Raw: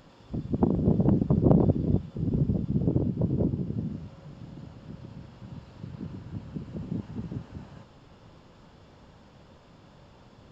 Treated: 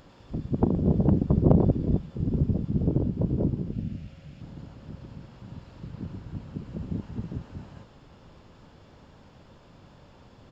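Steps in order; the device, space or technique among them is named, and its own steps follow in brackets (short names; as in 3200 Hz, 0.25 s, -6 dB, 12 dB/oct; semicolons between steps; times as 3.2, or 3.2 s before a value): octave pedal (harmoniser -12 st -6 dB); 3.72–4.41 fifteen-band EQ 400 Hz -7 dB, 1000 Hz -10 dB, 2500 Hz +6 dB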